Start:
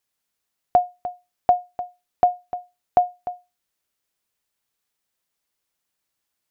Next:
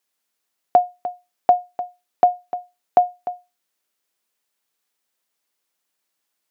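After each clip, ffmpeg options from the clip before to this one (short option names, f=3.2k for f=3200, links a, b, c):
-af "highpass=210,volume=2.5dB"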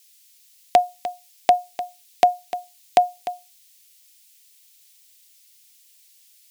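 -af "aexciter=amount=12.2:drive=2.7:freq=2k,volume=-1dB"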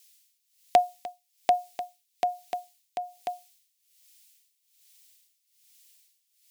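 -af "tremolo=f=1.2:d=0.86,volume=-3.5dB"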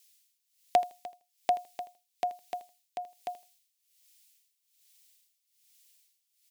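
-af "aecho=1:1:80|160:0.141|0.0283,volume=-4.5dB"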